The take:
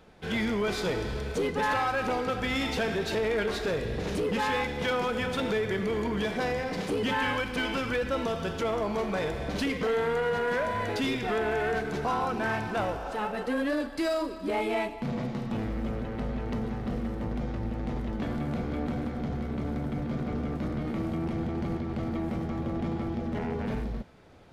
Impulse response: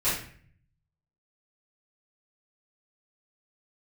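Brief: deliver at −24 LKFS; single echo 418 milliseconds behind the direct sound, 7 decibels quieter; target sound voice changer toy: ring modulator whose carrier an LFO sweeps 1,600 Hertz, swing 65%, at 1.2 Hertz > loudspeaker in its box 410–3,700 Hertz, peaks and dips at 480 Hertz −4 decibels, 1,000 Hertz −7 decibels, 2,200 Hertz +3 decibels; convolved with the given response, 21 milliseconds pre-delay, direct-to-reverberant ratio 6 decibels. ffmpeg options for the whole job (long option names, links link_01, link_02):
-filter_complex "[0:a]aecho=1:1:418:0.447,asplit=2[link_01][link_02];[1:a]atrim=start_sample=2205,adelay=21[link_03];[link_02][link_03]afir=irnorm=-1:irlink=0,volume=-17.5dB[link_04];[link_01][link_04]amix=inputs=2:normalize=0,aeval=exprs='val(0)*sin(2*PI*1600*n/s+1600*0.65/1.2*sin(2*PI*1.2*n/s))':channel_layout=same,highpass=410,equalizer=frequency=480:width_type=q:width=4:gain=-4,equalizer=frequency=1000:width_type=q:width=4:gain=-7,equalizer=frequency=2200:width_type=q:width=4:gain=3,lowpass=frequency=3700:width=0.5412,lowpass=frequency=3700:width=1.3066,volume=5.5dB"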